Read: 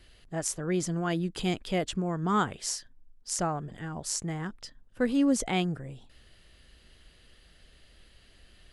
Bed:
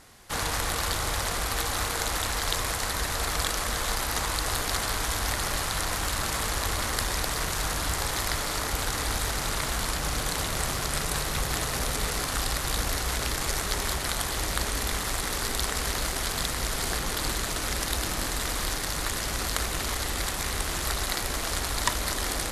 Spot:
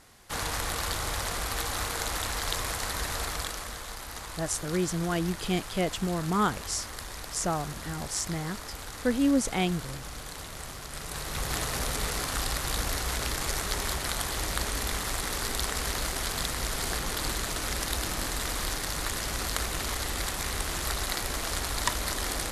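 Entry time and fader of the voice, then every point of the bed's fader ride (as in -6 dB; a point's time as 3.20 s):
4.05 s, +0.5 dB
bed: 3.17 s -3 dB
3.88 s -11.5 dB
10.89 s -11.5 dB
11.53 s -2 dB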